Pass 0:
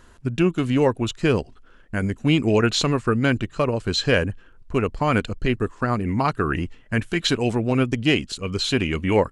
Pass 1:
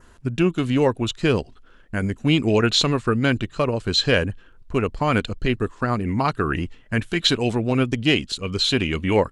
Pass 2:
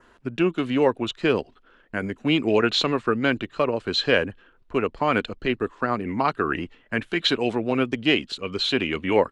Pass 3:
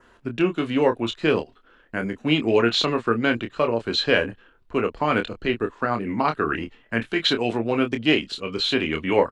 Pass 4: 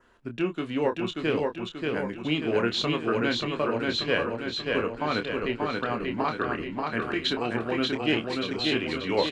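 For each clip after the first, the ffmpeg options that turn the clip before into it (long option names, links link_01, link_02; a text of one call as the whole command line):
ffmpeg -i in.wav -af "adynamicequalizer=threshold=0.00891:dfrequency=3700:dqfactor=2.5:tfrequency=3700:tqfactor=2.5:attack=5:release=100:ratio=0.375:range=3:mode=boostabove:tftype=bell" out.wav
ffmpeg -i in.wav -filter_complex "[0:a]acrossover=split=220 4100:gain=0.224 1 0.224[link_01][link_02][link_03];[link_01][link_02][link_03]amix=inputs=3:normalize=0" out.wav
ffmpeg -i in.wav -filter_complex "[0:a]asplit=2[link_01][link_02];[link_02]adelay=26,volume=-7dB[link_03];[link_01][link_03]amix=inputs=2:normalize=0" out.wav
ffmpeg -i in.wav -af "aecho=1:1:584|1168|1752|2336|2920|3504|4088:0.708|0.382|0.206|0.111|0.0602|0.0325|0.0176,volume=-6.5dB" out.wav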